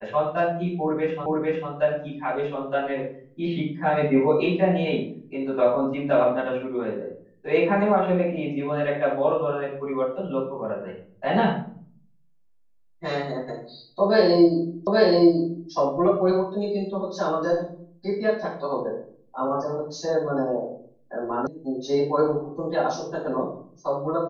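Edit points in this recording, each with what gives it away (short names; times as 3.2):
1.26 repeat of the last 0.45 s
14.87 repeat of the last 0.83 s
21.47 sound cut off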